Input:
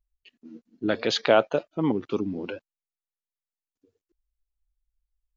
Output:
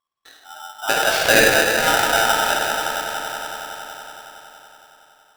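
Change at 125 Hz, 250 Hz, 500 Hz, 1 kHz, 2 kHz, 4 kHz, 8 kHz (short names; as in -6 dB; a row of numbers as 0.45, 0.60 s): +1.5 dB, -1.5 dB, +4.5 dB, +13.0 dB, +18.0 dB, +12.5 dB, n/a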